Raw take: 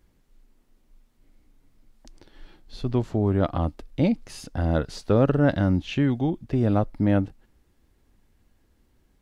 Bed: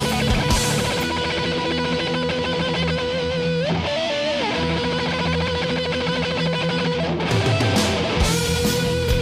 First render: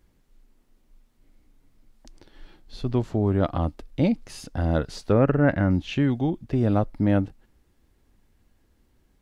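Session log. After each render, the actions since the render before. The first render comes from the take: 5.12–5.71 resonant high shelf 2800 Hz -7.5 dB, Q 3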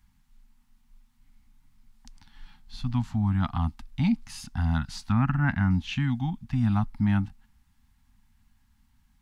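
Chebyshev band-stop 240–830 Hz, order 3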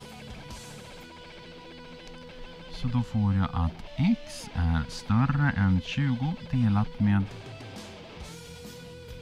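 add bed -23.5 dB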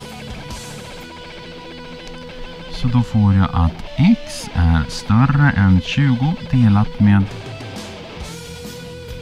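gain +11.5 dB; limiter -3 dBFS, peak gain reduction 2 dB

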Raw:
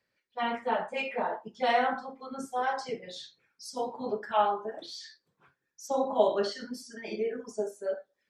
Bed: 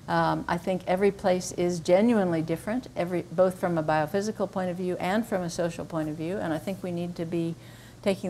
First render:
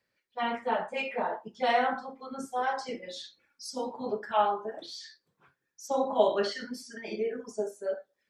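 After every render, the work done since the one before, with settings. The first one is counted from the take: 2.87–3.91 comb 3.5 ms, depth 66%; 5.91–6.98 bell 2200 Hz +9 dB 0.81 oct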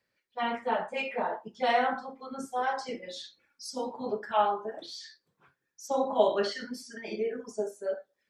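nothing audible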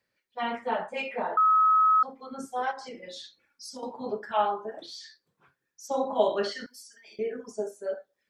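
1.37–2.03 bleep 1280 Hz -17.5 dBFS; 2.71–3.83 compressor, threshold -37 dBFS; 6.66–7.19 differentiator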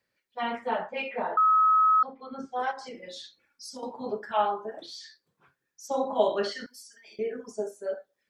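0.79–2.6 LPF 4500 Hz 24 dB/oct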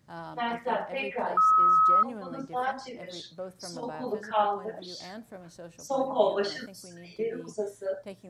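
add bed -17 dB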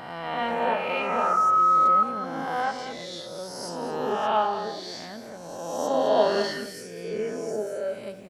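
spectral swells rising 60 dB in 1.61 s; on a send: echo 0.214 s -11.5 dB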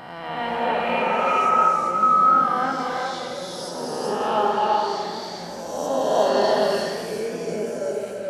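non-linear reverb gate 0.45 s rising, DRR -0.5 dB; warbling echo 85 ms, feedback 79%, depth 93 cents, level -11.5 dB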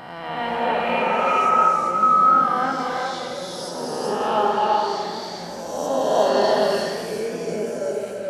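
gain +1 dB

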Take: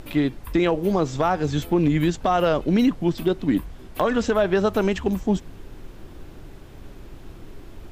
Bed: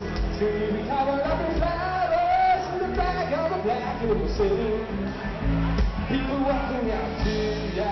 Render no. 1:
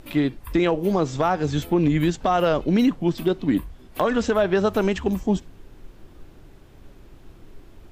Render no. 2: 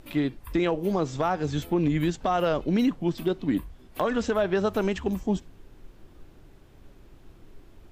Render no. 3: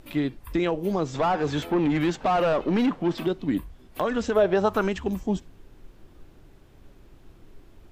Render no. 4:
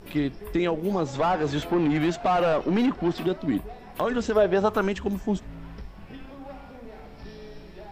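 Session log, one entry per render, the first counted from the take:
noise print and reduce 6 dB
gain -4.5 dB
1.14–3.27 overdrive pedal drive 19 dB, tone 1600 Hz, clips at -15 dBFS; 4.35–4.87 bell 390 Hz -> 1500 Hz +10.5 dB
add bed -17.5 dB

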